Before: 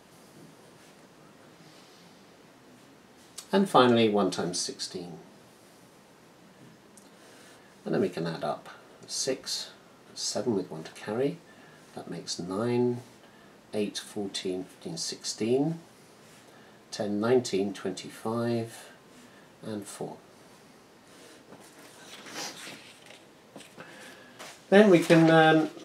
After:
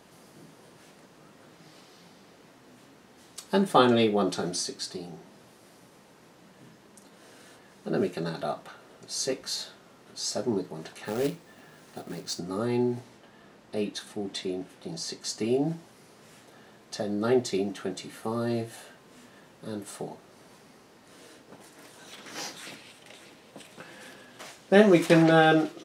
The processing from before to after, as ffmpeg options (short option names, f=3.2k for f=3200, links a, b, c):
-filter_complex "[0:a]asettb=1/sr,asplit=3[a][b][c];[a]atrim=end=11.054[d];[b]atrim=start=11.05:end=12.39,asetpts=PTS-STARTPTS,afade=t=in:d=0.004:c=qsin,afade=t=out:st=1.336:d=0.004:c=qsin,acrusher=bits=3:mode=log:mix=0:aa=0.000001[e];[c]atrim=start=12.386[f];[d][e]acrossfade=d=0.004:c1=hsin:c2=qsin[g];[g][f]acrossfade=d=0.004:c1=qsin:c2=hsin,asettb=1/sr,asplit=3[h][i][j];[h]atrim=end=12.994[k];[i]atrim=start=12.99:end=15.23,asetpts=PTS-STARTPTS,afade=t=in:d=0.004:c=qsin,afade=t=out:st=2.236:d=0.004:c=qsin,highshelf=f=7.8k:g=-6.5[l];[j]atrim=start=15.226[m];[k][l]acrossfade=d=0.004:c1=hsin:c2=qsin[n];[n][m]acrossfade=d=0.004:c1=qsin:c2=hsin,asplit=2[o][p];[p]afade=t=in:st=22.52:d=0.01,afade=t=out:st=23.66:d=0.01,aecho=0:1:590|1180|1770|2360|2950|3540|4130|4720:0.266073|0.172947|0.112416|0.0730702|0.0474956|0.0308721|0.0200669|0.0130435[q];[o][q]amix=inputs=2:normalize=0"